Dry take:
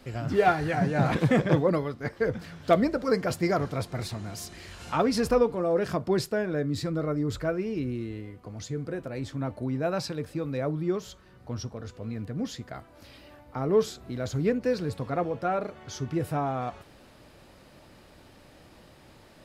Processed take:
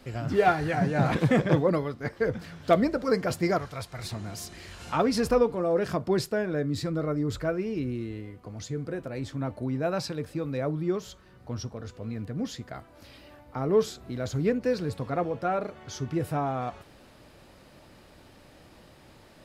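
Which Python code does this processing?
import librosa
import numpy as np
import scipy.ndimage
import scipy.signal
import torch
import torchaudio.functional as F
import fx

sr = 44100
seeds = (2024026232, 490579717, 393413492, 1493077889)

y = fx.peak_eq(x, sr, hz=270.0, db=-12.5, octaves=2.3, at=(3.58, 4.04))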